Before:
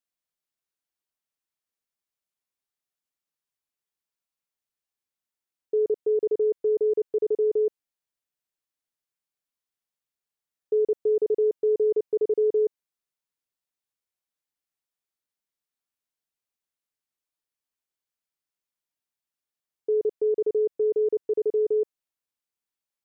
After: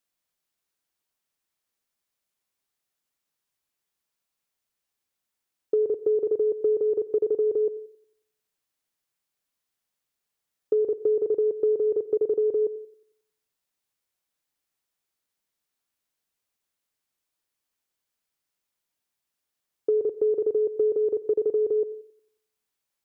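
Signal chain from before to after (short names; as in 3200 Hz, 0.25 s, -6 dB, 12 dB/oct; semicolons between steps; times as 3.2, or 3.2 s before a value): narrowing echo 90 ms, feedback 45%, band-pass 310 Hz, level -24 dB; compressor, threshold -27 dBFS, peak gain reduction 7 dB; on a send at -18 dB: reverb RT60 0.45 s, pre-delay 88 ms; on the sum: gain +6.5 dB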